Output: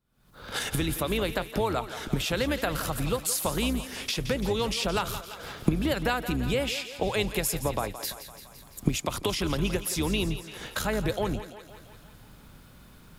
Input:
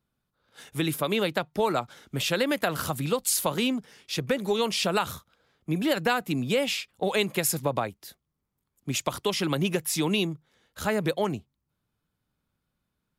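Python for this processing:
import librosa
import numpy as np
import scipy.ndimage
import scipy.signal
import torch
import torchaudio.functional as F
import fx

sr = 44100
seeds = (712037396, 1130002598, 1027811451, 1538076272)

y = fx.octave_divider(x, sr, octaves=2, level_db=-2.0)
y = fx.recorder_agc(y, sr, target_db=-19.0, rise_db_per_s=79.0, max_gain_db=30)
y = fx.echo_thinned(y, sr, ms=170, feedback_pct=66, hz=320.0, wet_db=-11.5)
y = y * 10.0 ** (-3.0 / 20.0)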